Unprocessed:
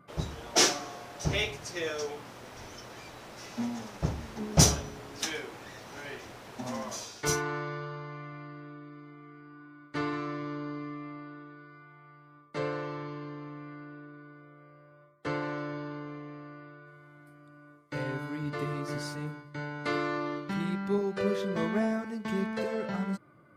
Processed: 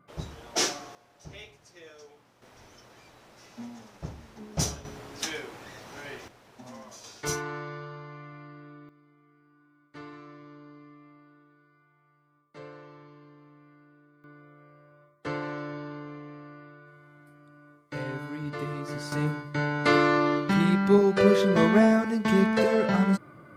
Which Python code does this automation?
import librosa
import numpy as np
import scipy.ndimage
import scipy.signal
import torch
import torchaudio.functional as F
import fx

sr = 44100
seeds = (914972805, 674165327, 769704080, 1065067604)

y = fx.gain(x, sr, db=fx.steps((0.0, -3.5), (0.95, -16.0), (2.42, -8.0), (4.85, 0.5), (6.28, -9.0), (7.04, -2.0), (8.89, -12.0), (14.24, 0.0), (19.12, 9.5)))